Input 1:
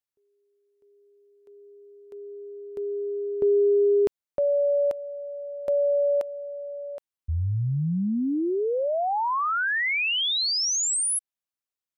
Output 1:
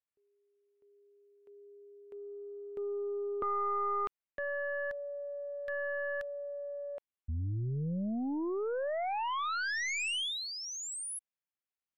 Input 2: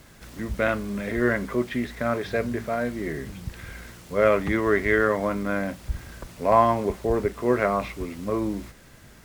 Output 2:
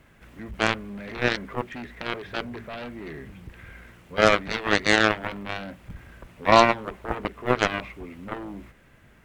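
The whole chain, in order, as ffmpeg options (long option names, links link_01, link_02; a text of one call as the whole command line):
ffmpeg -i in.wav -af "highshelf=frequency=3500:width_type=q:width=1.5:gain=-8.5,aeval=exprs='0.596*(cos(1*acos(clip(val(0)/0.596,-1,1)))-cos(1*PI/2))+0.015*(cos(5*acos(clip(val(0)/0.596,-1,1)))-cos(5*PI/2))+0.0075*(cos(6*acos(clip(val(0)/0.596,-1,1)))-cos(6*PI/2))+0.133*(cos(7*acos(clip(val(0)/0.596,-1,1)))-cos(7*PI/2))':channel_layout=same,volume=2dB" out.wav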